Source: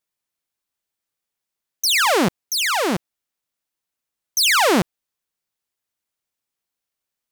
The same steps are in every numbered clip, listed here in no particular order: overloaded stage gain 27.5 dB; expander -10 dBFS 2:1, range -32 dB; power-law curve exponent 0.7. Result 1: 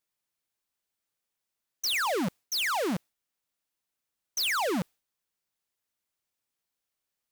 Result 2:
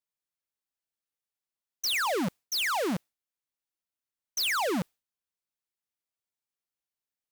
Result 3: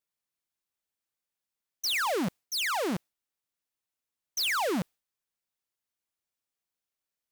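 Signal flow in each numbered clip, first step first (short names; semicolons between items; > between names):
expander > power-law curve > overloaded stage; power-law curve > expander > overloaded stage; expander > overloaded stage > power-law curve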